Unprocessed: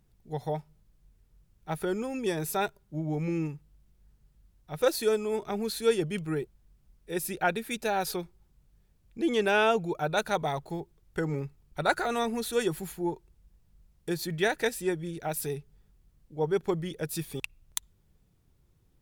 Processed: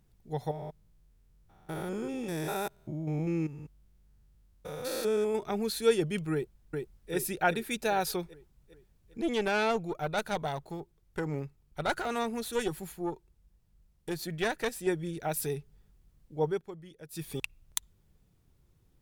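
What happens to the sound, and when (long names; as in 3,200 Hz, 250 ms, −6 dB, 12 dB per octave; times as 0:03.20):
0:00.51–0:05.35: spectrum averaged block by block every 200 ms
0:06.33–0:07.13: delay throw 400 ms, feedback 55%, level −3.5 dB
0:09.21–0:14.87: tube saturation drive 21 dB, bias 0.7
0:16.44–0:17.30: duck −15 dB, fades 0.20 s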